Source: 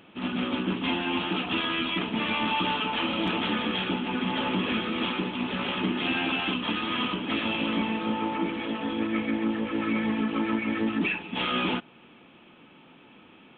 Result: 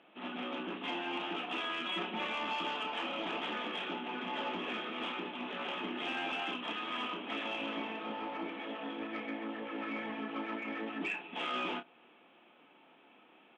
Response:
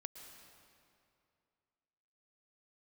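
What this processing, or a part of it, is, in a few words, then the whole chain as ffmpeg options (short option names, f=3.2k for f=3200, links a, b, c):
intercom: -filter_complex "[0:a]highpass=330,lowpass=3.8k,equalizer=f=710:t=o:w=0.4:g=5.5,asoftclip=type=tanh:threshold=-18.5dB,asplit=2[a][b];[b]adelay=29,volume=-8dB[c];[a][c]amix=inputs=2:normalize=0,asettb=1/sr,asplit=3[d][e][f];[d]atrim=end=1.854[g];[e]atrim=start=1.85:end=2.27,asetpts=PTS-STARTPTS,afade=t=in:d=0.004:c=qsin,afade=t=out:st=0.416:d=0.004:c=qsin,aecho=1:1:5.4:0.82,atrim=end_sample=18522[h];[f]atrim=start=2.266[i];[g][h]acrossfade=d=0.004:c1=hsin:c2=qsin[j];[j][i]acrossfade=d=0.004:c1=qsin:c2=hsin,volume=-8dB"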